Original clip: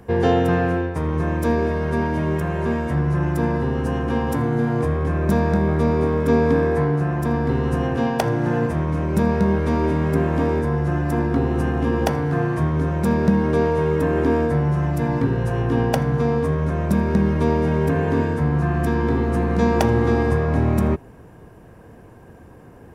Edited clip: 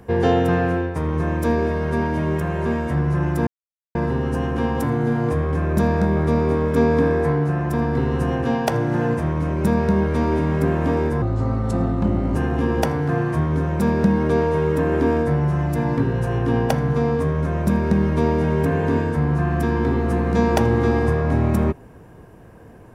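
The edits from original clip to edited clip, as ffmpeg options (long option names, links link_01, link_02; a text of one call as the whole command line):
ffmpeg -i in.wav -filter_complex "[0:a]asplit=4[link_01][link_02][link_03][link_04];[link_01]atrim=end=3.47,asetpts=PTS-STARTPTS,afade=type=out:start_time=3.466:duration=0.004:curve=hsin,apad=pad_dur=0.48[link_05];[link_02]atrim=start=3.47:end=10.744,asetpts=PTS-STARTPTS,afade=type=in:duration=0.004:curve=hsin[link_06];[link_03]atrim=start=10.74:end=11.59,asetpts=PTS-STARTPTS,asetrate=33075,aresample=44100[link_07];[link_04]atrim=start=11.586[link_08];[link_05][link_06]concat=n=2:v=0:a=1[link_09];[link_09][link_07]acrossfade=duration=0.004:curve1=hsin:curve2=hsin[link_10];[link_10][link_08]acrossfade=duration=0.004:curve1=hsin:curve2=hsin" out.wav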